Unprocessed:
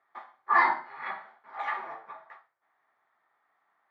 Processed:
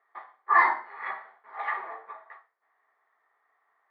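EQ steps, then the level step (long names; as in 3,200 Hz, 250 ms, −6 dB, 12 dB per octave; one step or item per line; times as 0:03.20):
loudspeaker in its box 260–4,800 Hz, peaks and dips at 440 Hz +10 dB, 700 Hz +4 dB, 1,100 Hz +7 dB, 1,900 Hz +8 dB
−4.0 dB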